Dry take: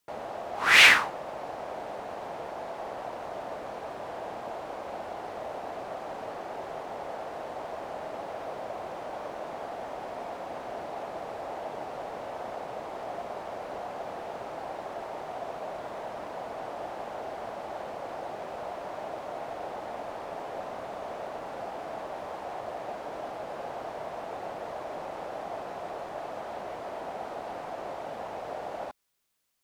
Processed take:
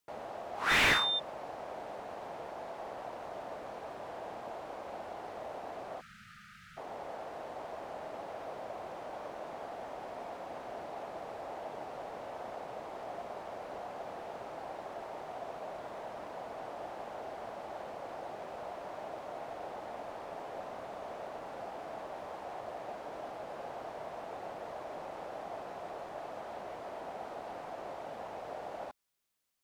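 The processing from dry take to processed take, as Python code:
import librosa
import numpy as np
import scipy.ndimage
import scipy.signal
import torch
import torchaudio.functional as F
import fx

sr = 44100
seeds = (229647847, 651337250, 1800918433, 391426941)

y = fx.dmg_tone(x, sr, hz=3600.0, level_db=-23.0, at=(0.69, 1.18), fade=0.02)
y = fx.spec_erase(y, sr, start_s=6.01, length_s=0.76, low_hz=230.0, high_hz=1200.0)
y = fx.slew_limit(y, sr, full_power_hz=270.0)
y = y * librosa.db_to_amplitude(-5.5)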